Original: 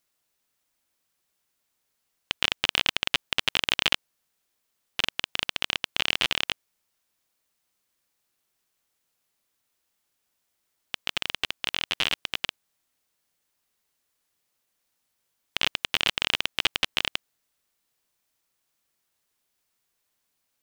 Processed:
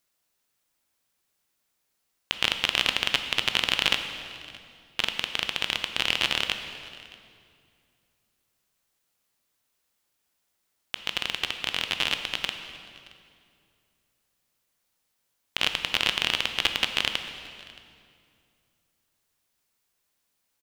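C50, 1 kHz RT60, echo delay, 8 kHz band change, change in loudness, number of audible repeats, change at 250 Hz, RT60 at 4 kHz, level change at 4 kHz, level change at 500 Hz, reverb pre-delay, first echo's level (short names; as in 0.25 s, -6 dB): 8.0 dB, 2.2 s, 0.623 s, +0.5 dB, +0.5 dB, 1, +1.0 dB, 1.9 s, +0.5 dB, +1.0 dB, 14 ms, -23.0 dB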